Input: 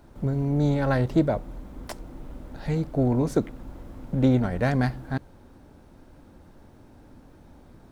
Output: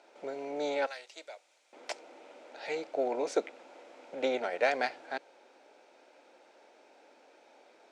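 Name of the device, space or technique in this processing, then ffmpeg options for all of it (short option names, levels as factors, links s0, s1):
phone speaker on a table: -filter_complex "[0:a]asettb=1/sr,asplit=3[s0][s1][s2];[s0]atrim=end=0.864[s3];[s1]atrim=start=0.86:end=1.73,asetpts=PTS-STARTPTS,afade=t=in:d=0.004:c=qsin,afade=t=out:st=0.866:d=0.004:c=qsin,aderivative[s4];[s2]atrim=start=1.726[s5];[s3][s4]acrossfade=d=0.004:c1=hsin:c2=qsin[s6];[s6][s5]acrossfade=d=0.004:c1=qsin:c2=hsin,highpass=f=470:w=0.5412,highpass=f=470:w=1.3066,equalizer=f=1100:t=q:w=4:g=-9,equalizer=f=1700:t=q:w=4:g=-3,equalizer=f=2400:t=q:w=4:g=7,lowpass=f=7400:w=0.5412,lowpass=f=7400:w=1.3066,volume=1.12"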